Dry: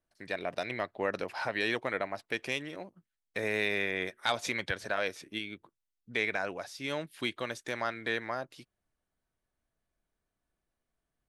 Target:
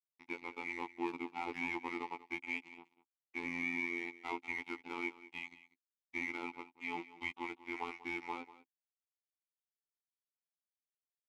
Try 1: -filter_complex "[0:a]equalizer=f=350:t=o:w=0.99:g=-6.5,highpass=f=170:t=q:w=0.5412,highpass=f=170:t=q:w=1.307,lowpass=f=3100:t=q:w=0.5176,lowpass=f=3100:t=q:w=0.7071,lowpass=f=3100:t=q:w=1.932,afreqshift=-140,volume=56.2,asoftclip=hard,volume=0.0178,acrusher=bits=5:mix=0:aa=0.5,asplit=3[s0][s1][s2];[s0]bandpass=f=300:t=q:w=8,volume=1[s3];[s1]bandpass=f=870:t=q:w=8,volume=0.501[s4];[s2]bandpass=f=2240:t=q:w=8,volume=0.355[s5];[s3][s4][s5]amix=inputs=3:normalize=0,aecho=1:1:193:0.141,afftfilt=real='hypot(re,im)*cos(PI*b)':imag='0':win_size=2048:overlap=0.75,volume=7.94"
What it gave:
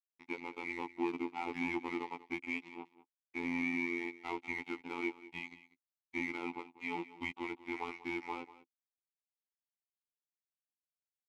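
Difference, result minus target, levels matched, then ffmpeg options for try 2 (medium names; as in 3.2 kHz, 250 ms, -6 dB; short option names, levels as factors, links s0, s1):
250 Hz band +3.5 dB
-filter_complex "[0:a]equalizer=f=350:t=o:w=0.99:g=-15,highpass=f=170:t=q:w=0.5412,highpass=f=170:t=q:w=1.307,lowpass=f=3100:t=q:w=0.5176,lowpass=f=3100:t=q:w=0.7071,lowpass=f=3100:t=q:w=1.932,afreqshift=-140,volume=56.2,asoftclip=hard,volume=0.0178,acrusher=bits=5:mix=0:aa=0.5,asplit=3[s0][s1][s2];[s0]bandpass=f=300:t=q:w=8,volume=1[s3];[s1]bandpass=f=870:t=q:w=8,volume=0.501[s4];[s2]bandpass=f=2240:t=q:w=8,volume=0.355[s5];[s3][s4][s5]amix=inputs=3:normalize=0,aecho=1:1:193:0.141,afftfilt=real='hypot(re,im)*cos(PI*b)':imag='0':win_size=2048:overlap=0.75,volume=7.94"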